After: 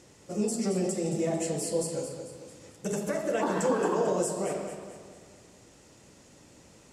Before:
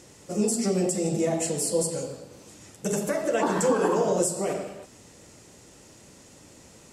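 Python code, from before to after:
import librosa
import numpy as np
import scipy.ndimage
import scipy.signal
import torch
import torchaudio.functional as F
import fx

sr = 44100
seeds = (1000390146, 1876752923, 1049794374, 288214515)

y = fx.high_shelf(x, sr, hz=7500.0, db=-6.0)
y = fx.echo_feedback(y, sr, ms=222, feedback_pct=46, wet_db=-9.5)
y = y * 10.0 ** (-4.0 / 20.0)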